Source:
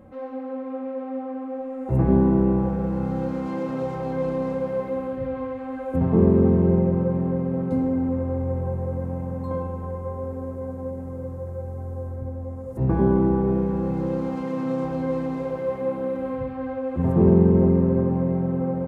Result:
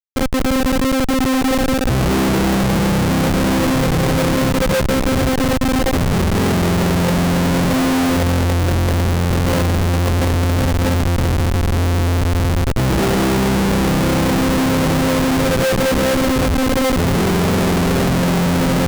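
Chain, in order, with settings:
0:03.75–0:06.38: downward compressor 10 to 1, threshold −26 dBFS, peak gain reduction 14.5 dB
comparator with hysteresis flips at −29.5 dBFS
level +8.5 dB

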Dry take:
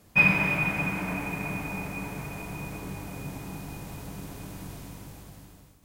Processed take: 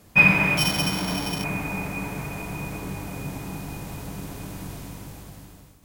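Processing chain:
0:00.57–0:01.44: samples sorted by size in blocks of 8 samples
level +4.5 dB

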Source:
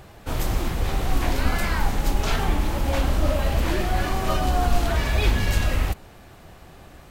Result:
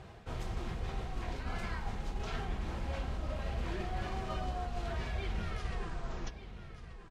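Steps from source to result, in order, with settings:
turntable brake at the end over 2.01 s
reversed playback
downward compressor 4 to 1, threshold −29 dBFS, peak gain reduction 13.5 dB
reversed playback
high-frequency loss of the air 76 metres
notch comb filter 290 Hz
on a send: single-tap delay 1,182 ms −12.5 dB
on the sum: level −4 dB

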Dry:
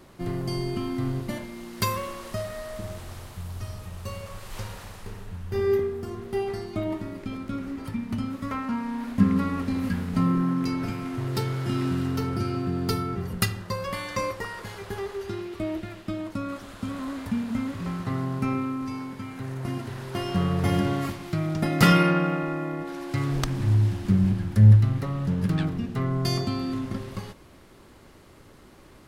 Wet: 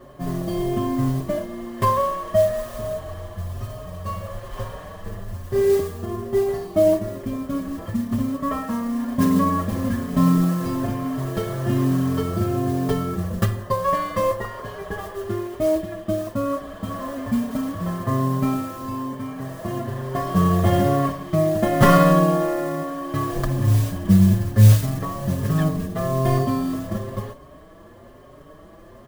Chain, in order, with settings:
stylus tracing distortion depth 0.48 ms
tilt shelving filter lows +6.5 dB, about 1,100 Hz
hollow resonant body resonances 630/1,100/1,700/3,100 Hz, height 14 dB, ringing for 25 ms
noise that follows the level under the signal 22 dB
barber-pole flanger 5.2 ms +1.1 Hz
level +1 dB

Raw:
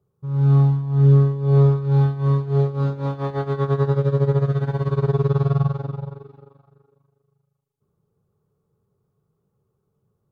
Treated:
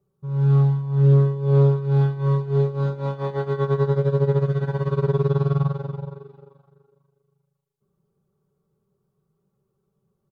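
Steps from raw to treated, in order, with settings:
comb filter 5.2 ms, depth 64%
highs frequency-modulated by the lows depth 0.1 ms
level −2.5 dB

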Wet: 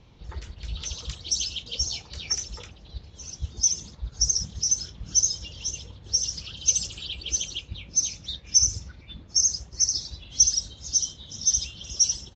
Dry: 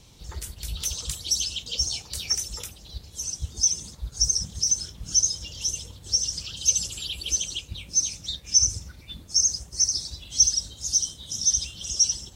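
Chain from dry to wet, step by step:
downsampling to 16,000 Hz
low-pass that shuts in the quiet parts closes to 2,400 Hz, open at −17 dBFS

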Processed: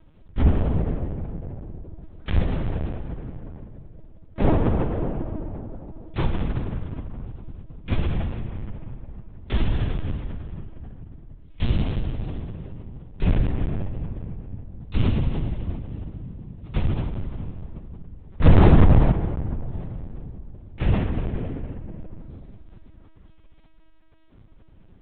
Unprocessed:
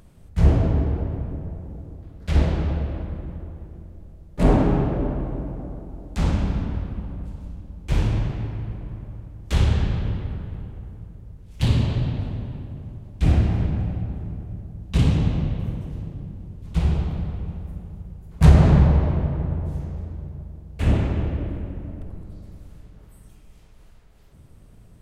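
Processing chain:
0:01.63–0:02.24: sub-octave generator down 2 octaves, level −3 dB
0:18.46–0:19.12: leveller curve on the samples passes 2
soft clipping −3 dBFS, distortion −22 dB
linear-prediction vocoder at 8 kHz pitch kept
level −1.5 dB

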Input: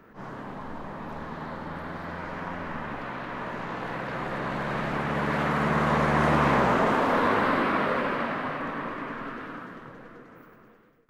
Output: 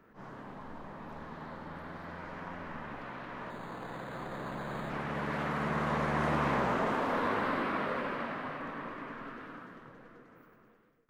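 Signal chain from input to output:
0:03.50–0:04.90: linearly interpolated sample-rate reduction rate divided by 8×
level −8 dB

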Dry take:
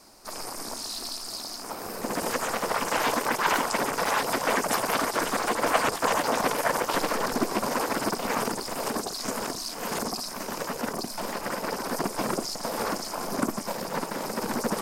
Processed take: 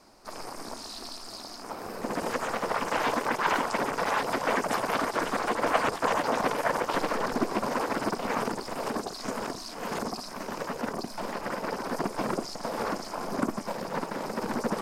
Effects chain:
low-pass filter 3,000 Hz 6 dB per octave
level −1 dB

